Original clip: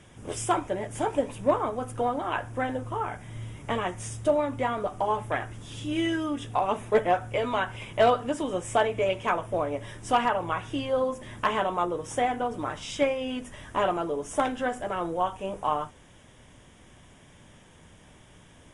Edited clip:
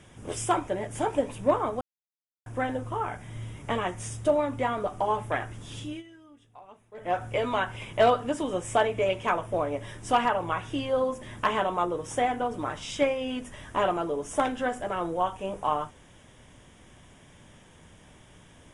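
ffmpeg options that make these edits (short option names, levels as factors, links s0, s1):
-filter_complex "[0:a]asplit=5[s0][s1][s2][s3][s4];[s0]atrim=end=1.81,asetpts=PTS-STARTPTS,afade=t=out:st=1.806:d=0.004:c=hsin[s5];[s1]atrim=start=1.81:end=2.46,asetpts=PTS-STARTPTS,volume=0[s6];[s2]atrim=start=2.46:end=6.03,asetpts=PTS-STARTPTS,afade=t=in:d=0.004:c=hsin,afade=t=out:st=3.32:d=0.25:silence=0.0668344[s7];[s3]atrim=start=6.03:end=6.97,asetpts=PTS-STARTPTS,volume=0.0668[s8];[s4]atrim=start=6.97,asetpts=PTS-STARTPTS,afade=t=in:d=0.25:silence=0.0668344[s9];[s5][s6][s7][s8][s9]concat=n=5:v=0:a=1"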